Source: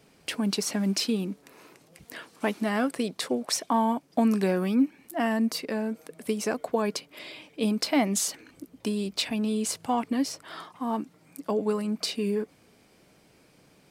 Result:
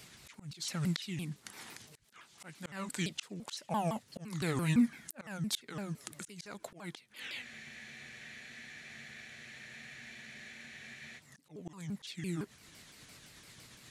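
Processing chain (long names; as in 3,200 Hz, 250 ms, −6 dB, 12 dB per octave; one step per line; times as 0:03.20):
pitch shifter swept by a sawtooth −6.5 semitones, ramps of 170 ms
guitar amp tone stack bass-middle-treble 5-5-5
volume swells 787 ms
frozen spectrum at 0:07.45, 3.72 s
level +17.5 dB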